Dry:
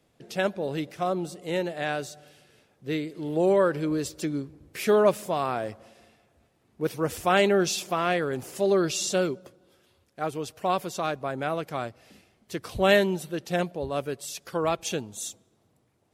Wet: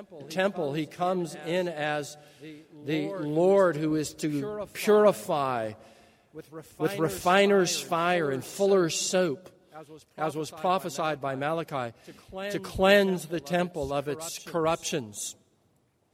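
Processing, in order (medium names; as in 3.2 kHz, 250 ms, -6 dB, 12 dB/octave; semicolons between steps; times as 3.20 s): reverse echo 463 ms -15.5 dB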